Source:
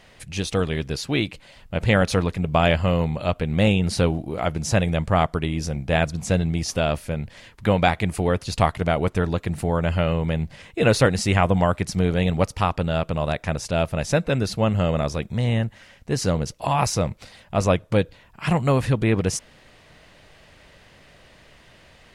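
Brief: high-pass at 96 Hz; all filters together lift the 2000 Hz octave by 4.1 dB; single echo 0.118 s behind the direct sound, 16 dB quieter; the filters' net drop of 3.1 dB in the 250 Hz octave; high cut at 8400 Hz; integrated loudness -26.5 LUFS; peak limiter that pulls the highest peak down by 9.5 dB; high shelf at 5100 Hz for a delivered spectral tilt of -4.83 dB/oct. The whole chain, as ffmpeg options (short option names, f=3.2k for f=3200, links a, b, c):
-af "highpass=96,lowpass=8.4k,equalizer=f=250:t=o:g=-4.5,equalizer=f=2k:t=o:g=6.5,highshelf=f=5.1k:g=-6.5,alimiter=limit=-10dB:level=0:latency=1,aecho=1:1:118:0.158,volume=-1.5dB"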